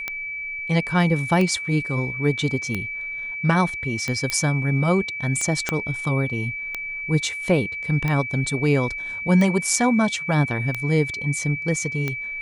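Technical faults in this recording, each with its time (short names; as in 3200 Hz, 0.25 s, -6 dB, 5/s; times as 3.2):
tick 45 rpm -12 dBFS
tone 2300 Hz -28 dBFS
4.3 pop -9 dBFS
5.69 pop -7 dBFS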